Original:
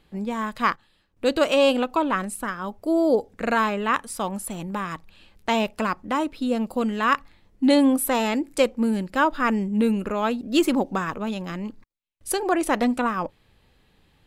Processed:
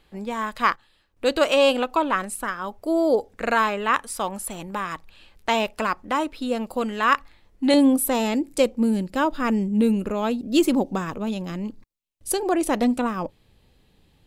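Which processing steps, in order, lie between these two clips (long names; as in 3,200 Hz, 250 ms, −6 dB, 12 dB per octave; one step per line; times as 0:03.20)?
parametric band 170 Hz −7 dB 1.8 octaves, from 0:07.74 1,500 Hz
level +2 dB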